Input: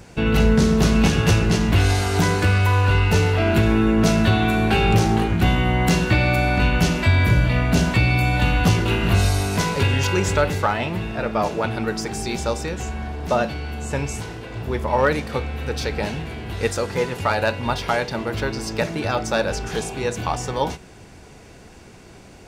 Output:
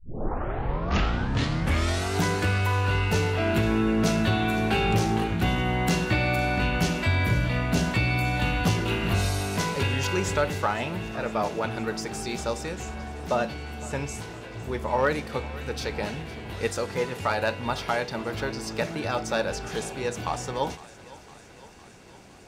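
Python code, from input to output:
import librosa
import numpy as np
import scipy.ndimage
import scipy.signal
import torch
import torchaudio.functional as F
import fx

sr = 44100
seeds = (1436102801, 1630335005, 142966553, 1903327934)

y = fx.tape_start_head(x, sr, length_s=2.15)
y = fx.low_shelf(y, sr, hz=81.0, db=-6.5)
y = fx.echo_thinned(y, sr, ms=508, feedback_pct=72, hz=420.0, wet_db=-18.5)
y = y * librosa.db_to_amplitude(-5.0)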